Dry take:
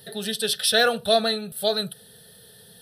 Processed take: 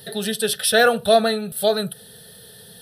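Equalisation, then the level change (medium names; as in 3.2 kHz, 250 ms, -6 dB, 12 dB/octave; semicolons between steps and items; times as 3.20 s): dynamic bell 4.3 kHz, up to -8 dB, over -37 dBFS, Q 1; +5.5 dB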